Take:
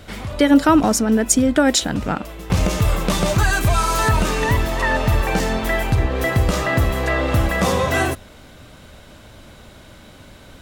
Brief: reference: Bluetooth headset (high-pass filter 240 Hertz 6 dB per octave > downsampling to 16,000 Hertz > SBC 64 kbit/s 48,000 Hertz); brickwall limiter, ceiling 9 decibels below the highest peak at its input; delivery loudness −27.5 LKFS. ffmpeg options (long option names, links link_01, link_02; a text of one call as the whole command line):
ffmpeg -i in.wav -af "alimiter=limit=-11.5dB:level=0:latency=1,highpass=frequency=240:poles=1,aresample=16000,aresample=44100,volume=-4.5dB" -ar 48000 -c:a sbc -b:a 64k out.sbc